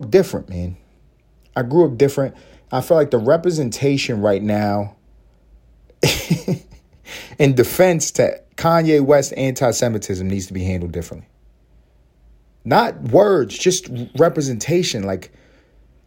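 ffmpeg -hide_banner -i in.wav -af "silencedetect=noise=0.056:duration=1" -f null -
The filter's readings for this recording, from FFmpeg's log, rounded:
silence_start: 4.87
silence_end: 6.03 | silence_duration: 1.16
silence_start: 11.13
silence_end: 12.66 | silence_duration: 1.53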